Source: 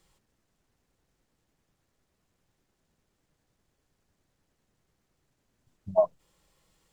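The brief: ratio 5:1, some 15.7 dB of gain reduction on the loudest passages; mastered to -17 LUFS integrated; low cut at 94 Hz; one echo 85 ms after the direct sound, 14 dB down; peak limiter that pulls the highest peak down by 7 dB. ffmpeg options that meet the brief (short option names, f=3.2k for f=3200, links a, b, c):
-af "highpass=94,acompressor=threshold=-35dB:ratio=5,alimiter=level_in=8dB:limit=-24dB:level=0:latency=1,volume=-8dB,aecho=1:1:85:0.2,volume=28.5dB"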